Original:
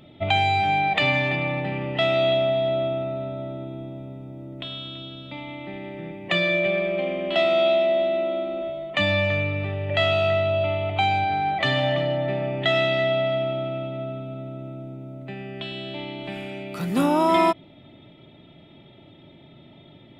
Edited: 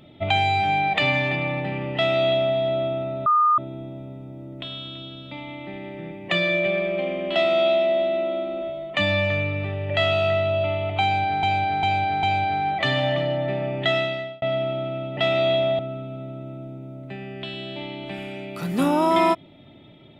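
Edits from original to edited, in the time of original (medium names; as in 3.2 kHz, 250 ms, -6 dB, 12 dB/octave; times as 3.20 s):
1.95–2.57 s: copy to 13.97 s
3.26–3.58 s: bleep 1.22 kHz -14.5 dBFS
11.03–11.43 s: loop, 4 plays
12.69–13.22 s: fade out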